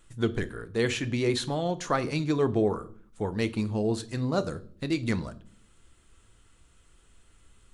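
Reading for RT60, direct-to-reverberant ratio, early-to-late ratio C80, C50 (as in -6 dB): 0.50 s, 11.0 dB, 23.0 dB, 19.0 dB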